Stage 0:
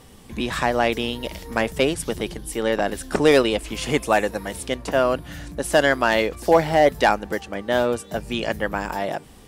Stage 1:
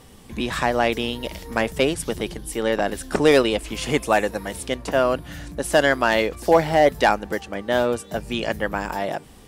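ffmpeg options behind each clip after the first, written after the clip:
ffmpeg -i in.wav -af anull out.wav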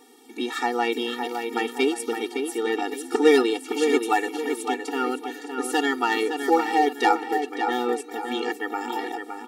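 ffmpeg -i in.wav -filter_complex "[0:a]asplit=2[link_01][link_02];[link_02]adelay=563,lowpass=frequency=3700:poles=1,volume=-6dB,asplit=2[link_03][link_04];[link_04]adelay=563,lowpass=frequency=3700:poles=1,volume=0.41,asplit=2[link_05][link_06];[link_06]adelay=563,lowpass=frequency=3700:poles=1,volume=0.41,asplit=2[link_07][link_08];[link_08]adelay=563,lowpass=frequency=3700:poles=1,volume=0.41,asplit=2[link_09][link_10];[link_10]adelay=563,lowpass=frequency=3700:poles=1,volume=0.41[link_11];[link_01][link_03][link_05][link_07][link_09][link_11]amix=inputs=6:normalize=0,afftfilt=real='re*eq(mod(floor(b*sr/1024/240),2),1)':imag='im*eq(mod(floor(b*sr/1024/240),2),1)':win_size=1024:overlap=0.75" out.wav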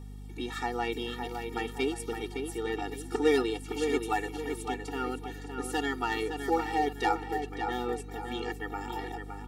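ffmpeg -i in.wav -af "aeval=exprs='val(0)+0.02*(sin(2*PI*50*n/s)+sin(2*PI*2*50*n/s)/2+sin(2*PI*3*50*n/s)/3+sin(2*PI*4*50*n/s)/4+sin(2*PI*5*50*n/s)/5)':channel_layout=same,volume=-8dB" out.wav

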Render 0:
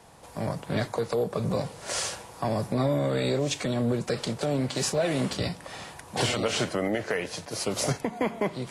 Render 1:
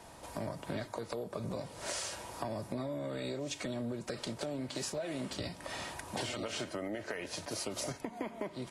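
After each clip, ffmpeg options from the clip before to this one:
ffmpeg -i in.wav -af "aecho=1:1:3.2:0.35,acompressor=threshold=-36dB:ratio=6" out.wav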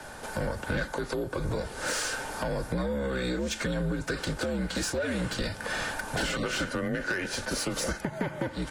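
ffmpeg -i in.wav -filter_complex "[0:a]equalizer=frequency=1600:width_type=o:width=0.29:gain=13,acrossover=split=390[link_01][link_02];[link_02]asoftclip=type=tanh:threshold=-33dB[link_03];[link_01][link_03]amix=inputs=2:normalize=0,afreqshift=-73,volume=8.5dB" out.wav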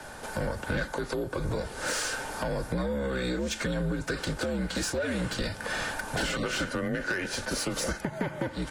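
ffmpeg -i in.wav -af anull out.wav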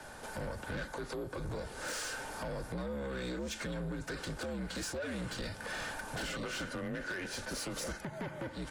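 ffmpeg -i in.wav -af "asoftclip=type=tanh:threshold=-28dB,volume=-5.5dB" out.wav

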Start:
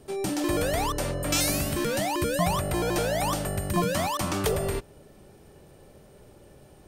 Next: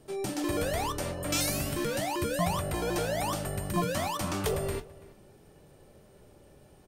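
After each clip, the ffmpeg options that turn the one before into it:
ffmpeg -i in.wav -filter_complex "[0:a]flanger=delay=6.1:depth=7:regen=-57:speed=0.54:shape=triangular,asplit=2[link_01][link_02];[link_02]adelay=332.4,volume=-20dB,highshelf=frequency=4000:gain=-7.48[link_03];[link_01][link_03]amix=inputs=2:normalize=0" out.wav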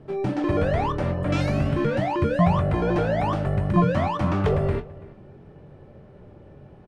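ffmpeg -i in.wav -filter_complex "[0:a]lowpass=2000,equalizer=frequency=130:width=0.76:gain=6,asplit=2[link_01][link_02];[link_02]adelay=22,volume=-13dB[link_03];[link_01][link_03]amix=inputs=2:normalize=0,volume=6.5dB" out.wav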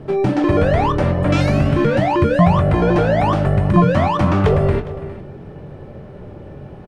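ffmpeg -i in.wav -filter_complex "[0:a]aecho=1:1:409:0.0841,asplit=2[link_01][link_02];[link_02]acompressor=threshold=-29dB:ratio=6,volume=3dB[link_03];[link_01][link_03]amix=inputs=2:normalize=0,volume=4dB" out.wav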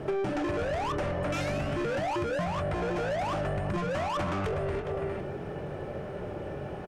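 ffmpeg -i in.wav -filter_complex "[0:a]asplit=2[link_01][link_02];[link_02]highpass=frequency=720:poles=1,volume=24dB,asoftclip=type=tanh:threshold=-1dB[link_03];[link_01][link_03]amix=inputs=2:normalize=0,lowpass=frequency=3200:poles=1,volume=-6dB,equalizer=frequency=125:width_type=o:width=1:gain=-4,equalizer=frequency=250:width_type=o:width=1:gain=-8,equalizer=frequency=500:width_type=o:width=1:gain=-5,equalizer=frequency=1000:width_type=o:width=1:gain=-9,equalizer=frequency=2000:width_type=o:width=1:gain=-6,equalizer=frequency=4000:width_type=o:width=1:gain=-9,acompressor=threshold=-24dB:ratio=12,volume=-3.5dB" out.wav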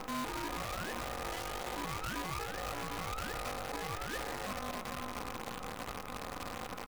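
ffmpeg -i in.wav -af "alimiter=level_in=7dB:limit=-24dB:level=0:latency=1:release=77,volume=-7dB,aeval=exprs='val(0)*sin(2*PI*640*n/s)':channel_layout=same,acrusher=bits=7:dc=4:mix=0:aa=0.000001" out.wav

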